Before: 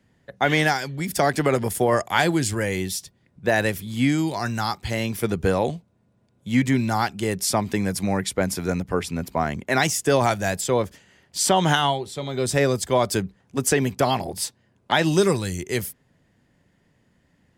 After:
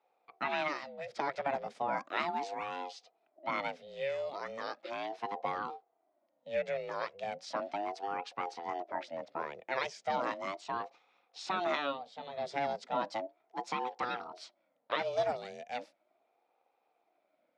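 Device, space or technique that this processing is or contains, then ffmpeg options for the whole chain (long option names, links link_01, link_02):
voice changer toy: -af "aeval=exprs='val(0)*sin(2*PI*450*n/s+450*0.4/0.36*sin(2*PI*0.36*n/s))':channel_layout=same,highpass=400,equalizer=frequency=410:width_type=q:width=4:gain=-8,equalizer=frequency=640:width_type=q:width=4:gain=4,equalizer=frequency=1100:width_type=q:width=4:gain=-4,equalizer=frequency=1600:width_type=q:width=4:gain=-4,equalizer=frequency=2900:width_type=q:width=4:gain=-6,equalizer=frequency=4200:width_type=q:width=4:gain=-3,lowpass=frequency=4300:width=0.5412,lowpass=frequency=4300:width=1.3066,volume=-8dB"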